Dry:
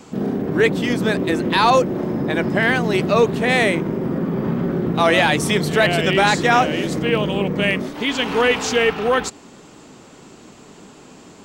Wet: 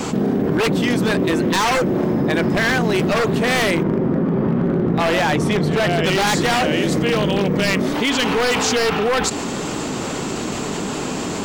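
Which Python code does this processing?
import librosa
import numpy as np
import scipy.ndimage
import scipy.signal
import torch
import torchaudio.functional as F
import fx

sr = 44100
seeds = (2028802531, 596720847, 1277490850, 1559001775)

y = fx.lowpass(x, sr, hz=1700.0, slope=6, at=(3.83, 6.04))
y = 10.0 ** (-13.0 / 20.0) * (np.abs((y / 10.0 ** (-13.0 / 20.0) + 3.0) % 4.0 - 2.0) - 1.0)
y = fx.env_flatten(y, sr, amount_pct=70)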